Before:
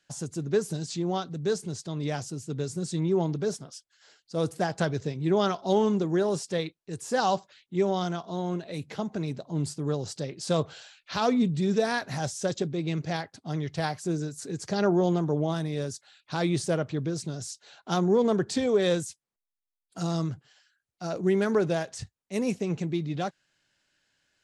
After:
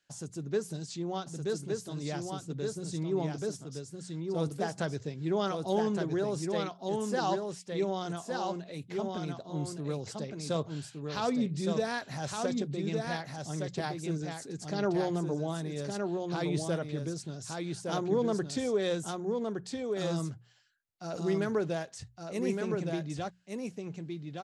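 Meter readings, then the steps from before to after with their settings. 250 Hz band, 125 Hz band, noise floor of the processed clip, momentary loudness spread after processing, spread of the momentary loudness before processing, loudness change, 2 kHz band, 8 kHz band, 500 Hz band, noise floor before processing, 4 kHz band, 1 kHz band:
-5.0 dB, -5.0 dB, -56 dBFS, 9 LU, 11 LU, -5.5 dB, -4.5 dB, -4.5 dB, -4.5 dB, under -85 dBFS, -4.5 dB, -4.5 dB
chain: notches 60/120/180 Hz; echo 1.165 s -4 dB; gain -6 dB

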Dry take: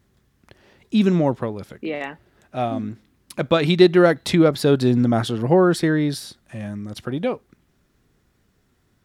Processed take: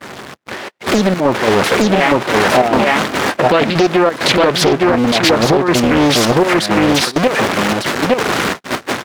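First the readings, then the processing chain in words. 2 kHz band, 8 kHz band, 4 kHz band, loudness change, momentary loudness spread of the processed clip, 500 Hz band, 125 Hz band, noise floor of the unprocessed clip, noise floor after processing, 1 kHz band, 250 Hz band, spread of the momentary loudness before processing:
+14.5 dB, +16.5 dB, +14.0 dB, +6.5 dB, 6 LU, +7.0 dB, +3.0 dB, -65 dBFS, -36 dBFS, +14.0 dB, +5.5 dB, 18 LU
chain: zero-crossing step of -24.5 dBFS; high shelf 3000 Hz -11.5 dB; step gate "xxx.xx.xxx.x." 132 bpm -12 dB; echo 0.862 s -3.5 dB; gate -31 dBFS, range -48 dB; compressor 10:1, threshold -20 dBFS, peak gain reduction 13 dB; weighting filter A; maximiser +22 dB; Doppler distortion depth 0.83 ms; gain -1 dB

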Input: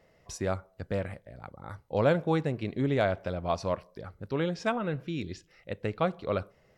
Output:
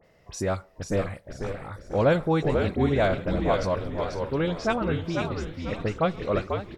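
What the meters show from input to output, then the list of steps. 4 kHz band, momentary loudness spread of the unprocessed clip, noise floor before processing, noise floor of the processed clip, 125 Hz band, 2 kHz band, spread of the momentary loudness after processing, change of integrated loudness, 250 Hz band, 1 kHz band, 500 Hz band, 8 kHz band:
+5.0 dB, 18 LU, -65 dBFS, -59 dBFS, +4.5 dB, +4.5 dB, 11 LU, +4.0 dB, +5.0 dB, +4.5 dB, +5.0 dB, n/a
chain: dispersion highs, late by 43 ms, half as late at 2700 Hz; on a send: frequency-shifting echo 0.491 s, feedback 36%, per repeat -81 Hz, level -5 dB; on the sum: warbling echo 0.545 s, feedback 47%, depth 176 cents, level -14 dB; gain +3.5 dB

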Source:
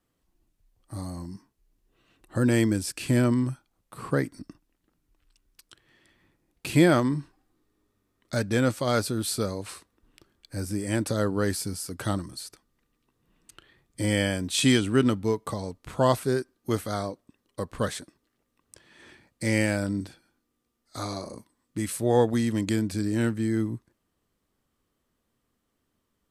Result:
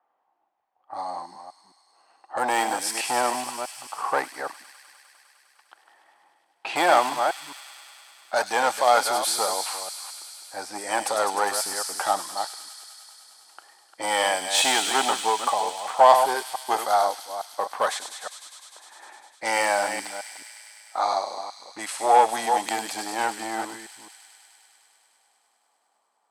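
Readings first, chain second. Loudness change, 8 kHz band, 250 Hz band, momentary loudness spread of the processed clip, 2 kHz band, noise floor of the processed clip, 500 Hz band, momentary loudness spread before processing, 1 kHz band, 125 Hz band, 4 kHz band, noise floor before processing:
+2.5 dB, +7.0 dB, -13.5 dB, 18 LU, +5.5 dB, -70 dBFS, +2.0 dB, 17 LU, +14.0 dB, under -25 dB, +6.5 dB, -77 dBFS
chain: reverse delay 0.215 s, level -9 dB; low-pass opened by the level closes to 1500 Hz, open at -23.5 dBFS; in parallel at -5 dB: wavefolder -21 dBFS; on the sum: resonant high-pass 800 Hz, resonance Q 6.7; thin delay 0.101 s, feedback 84%, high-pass 3700 Hz, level -5 dB; gain +1 dB

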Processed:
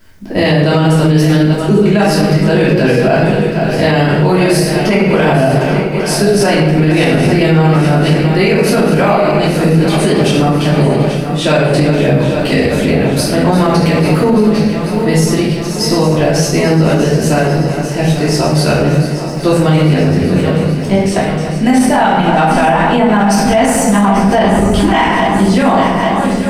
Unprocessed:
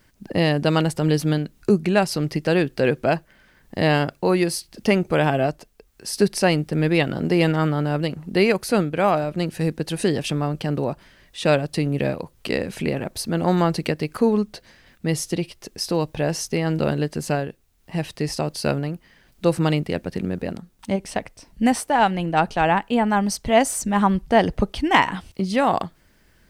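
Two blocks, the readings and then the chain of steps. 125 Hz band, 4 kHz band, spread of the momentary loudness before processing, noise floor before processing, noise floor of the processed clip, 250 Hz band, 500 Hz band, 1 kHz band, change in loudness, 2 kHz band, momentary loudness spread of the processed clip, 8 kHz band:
+13.5 dB, +10.5 dB, 9 LU, -58 dBFS, -17 dBFS, +12.0 dB, +10.5 dB, +9.5 dB, +11.0 dB, +10.0 dB, 4 LU, +10.0 dB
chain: regenerating reverse delay 0.418 s, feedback 79%, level -11 dB; shoebox room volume 280 m³, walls mixed, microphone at 2.9 m; maximiser +5.5 dB; gain -1 dB

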